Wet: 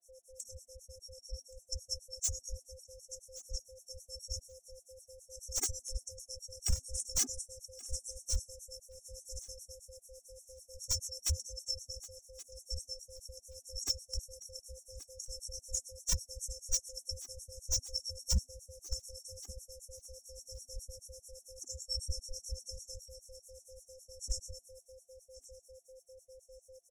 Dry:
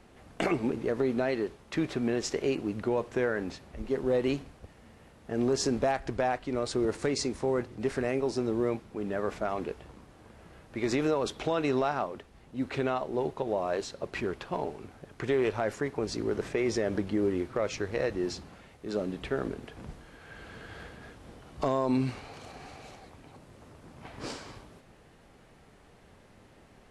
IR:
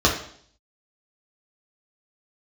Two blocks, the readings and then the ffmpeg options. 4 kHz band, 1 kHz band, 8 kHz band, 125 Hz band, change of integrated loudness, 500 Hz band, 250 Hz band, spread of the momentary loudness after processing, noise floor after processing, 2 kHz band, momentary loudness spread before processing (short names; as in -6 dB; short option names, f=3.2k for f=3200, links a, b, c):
+1.5 dB, -29.0 dB, +8.5 dB, -7.0 dB, -9.0 dB, -23.0 dB, -29.5 dB, 20 LU, -68 dBFS, -23.5 dB, 18 LU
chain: -filter_complex "[0:a]afftfilt=real='real(if(lt(b,272),68*(eq(floor(b/68),0)*3+eq(floor(b/68),1)*0+eq(floor(b/68),2)*1+eq(floor(b/68),3)*2)+mod(b,68),b),0)':imag='imag(if(lt(b,272),68*(eq(floor(b/68),0)*3+eq(floor(b/68),1)*0+eq(floor(b/68),2)*1+eq(floor(b/68),3)*2)+mod(b,68),b),0)':win_size=2048:overlap=0.75,afftfilt=real='re*(1-between(b*sr/4096,140,5400))':imag='im*(1-between(b*sr/4096,140,5400))':win_size=4096:overlap=0.75,lowshelf=f=150:g=10,aecho=1:1:2.4:0.33,bandreject=f=398.5:t=h:w=4,bandreject=f=797:t=h:w=4,bandreject=f=1.1955k:t=h:w=4,bandreject=f=1.594k:t=h:w=4,bandreject=f=1.9925k:t=h:w=4,bandreject=f=2.391k:t=h:w=4,bandreject=f=2.7895k:t=h:w=4,bandreject=f=3.188k:t=h:w=4,bandreject=f=3.5865k:t=h:w=4,bandreject=f=3.985k:t=h:w=4,bandreject=f=4.3835k:t=h:w=4,bandreject=f=4.782k:t=h:w=4,bandreject=f=5.1805k:t=h:w=4,bandreject=f=5.579k:t=h:w=4,bandreject=f=5.9775k:t=h:w=4,bandreject=f=6.376k:t=h:w=4,bandreject=f=6.7745k:t=h:w=4,bandreject=f=7.173k:t=h:w=4,bandreject=f=7.5715k:t=h:w=4,bandreject=f=7.97k:t=h:w=4,bandreject=f=8.3685k:t=h:w=4,bandreject=f=8.767k:t=h:w=4,bandreject=f=9.1655k:t=h:w=4,bandreject=f=9.564k:t=h:w=4,bandreject=f=9.9625k:t=h:w=4,bandreject=f=10.361k:t=h:w=4,bandreject=f=10.7595k:t=h:w=4,bandreject=f=11.158k:t=h:w=4,bandreject=f=11.5565k:t=h:w=4,bandreject=f=11.955k:t=h:w=4,bandreject=f=12.3535k:t=h:w=4,bandreject=f=12.752k:t=h:w=4,bandreject=f=13.1505k:t=h:w=4,bandreject=f=13.549k:t=h:w=4,bandreject=f=13.9475k:t=h:w=4,bandreject=f=14.346k:t=h:w=4,bandreject=f=14.7445k:t=h:w=4,bandreject=f=15.143k:t=h:w=4,bandreject=f=15.5415k:t=h:w=4,dynaudnorm=f=540:g=17:m=7dB,afreqshift=-88,acrossover=split=1100[a][b];[a]aeval=exprs='val(0)*(1-1/2+1/2*cos(2*PI*9.1*n/s))':c=same[c];[b]aeval=exprs='val(0)*(1-1/2-1/2*cos(2*PI*9.1*n/s))':c=same[d];[c][d]amix=inputs=2:normalize=0,asoftclip=type=hard:threshold=-39dB,aeval=exprs='val(0)+0.000398*sin(2*PI*520*n/s)':c=same,aecho=1:1:1125|2250:0.15|0.0239,afftfilt=real='re*gt(sin(2*PI*5*pts/sr)*(1-2*mod(floor(b*sr/1024/220),2)),0)':imag='im*gt(sin(2*PI*5*pts/sr)*(1-2*mod(floor(b*sr/1024/220),2)),0)':win_size=1024:overlap=0.75,volume=15dB"